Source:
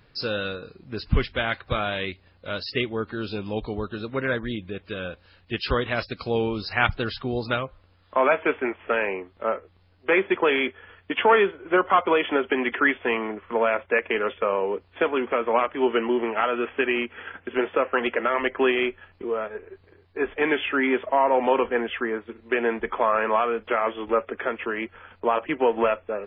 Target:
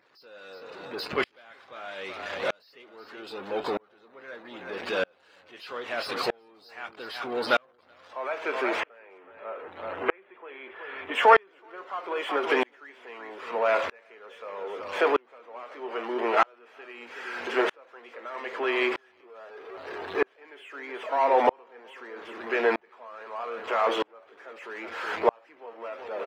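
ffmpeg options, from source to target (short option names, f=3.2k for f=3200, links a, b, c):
-filter_complex "[0:a]aeval=exprs='val(0)+0.5*0.0841*sgn(val(0))':c=same,asettb=1/sr,asplit=3[a][b][c];[a]atrim=end=8.804[d];[b]atrim=start=8.8:end=11.14,asetpts=PTS-STARTPTS,afade=t=in:d=0.004:c=qsin,afade=t=out:st=2.336:d=0.004:c=qsin,acrossover=split=3700[e][f];[f]acompressor=threshold=-42dB:ratio=4:attack=1:release=60[g];[e][g]amix=inputs=2:normalize=0[h];[c]atrim=start=11.136[i];[d][h]acrossfade=d=0.004:c1=hsin:c2=qsin[j];[j][i]acrossfade=d=0.004:c1=qsin:c2=hsin,afftdn=nr=26:nf=-35,highpass=510,highshelf=f=2.1k:g=-7,acompressor=mode=upward:threshold=-32dB:ratio=2.5,asplit=2[k][l];[l]adelay=21,volume=-14dB[m];[k][m]amix=inputs=2:normalize=0,aecho=1:1:375:0.282,aeval=exprs='val(0)*pow(10,-37*if(lt(mod(-0.79*n/s,1),2*abs(-0.79)/1000),1-mod(-0.79*n/s,1)/(2*abs(-0.79)/1000),(mod(-0.79*n/s,1)-2*abs(-0.79)/1000)/(1-2*abs(-0.79)/1000))/20)':c=same,volume=4dB"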